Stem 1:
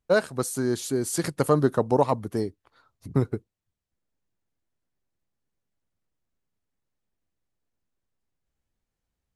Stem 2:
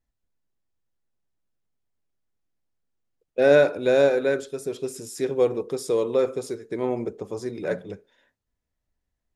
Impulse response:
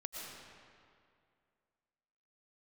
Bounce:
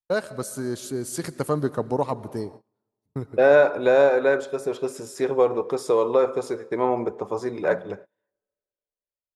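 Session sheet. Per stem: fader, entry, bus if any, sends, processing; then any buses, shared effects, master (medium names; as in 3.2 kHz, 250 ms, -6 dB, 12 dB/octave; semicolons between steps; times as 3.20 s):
-4.5 dB, 0.00 s, send -12.5 dB, auto duck -7 dB, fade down 0.95 s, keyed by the second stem
-1.5 dB, 0.00 s, send -20.5 dB, treble shelf 8.5 kHz -4 dB; compression 2:1, threshold -22 dBFS, peak gain reduction 6 dB; peaking EQ 970 Hz +14 dB 1.7 oct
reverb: on, RT60 2.3 s, pre-delay 75 ms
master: gate -40 dBFS, range -29 dB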